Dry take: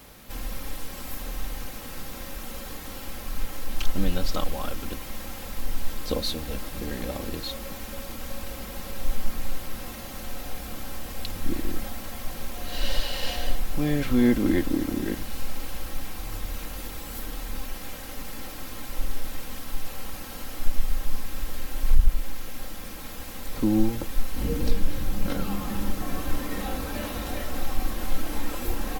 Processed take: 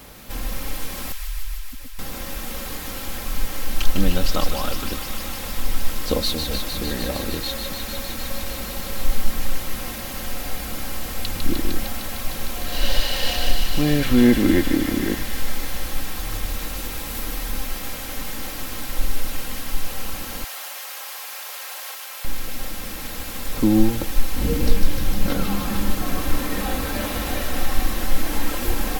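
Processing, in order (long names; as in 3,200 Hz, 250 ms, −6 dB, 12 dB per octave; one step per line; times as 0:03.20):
0:01.12–0:01.99: expanding power law on the bin magnitudes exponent 3.5
0:20.44–0:22.25: high-pass filter 620 Hz 24 dB per octave
delay with a high-pass on its return 152 ms, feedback 84%, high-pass 1,500 Hz, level −5.5 dB
level +5.5 dB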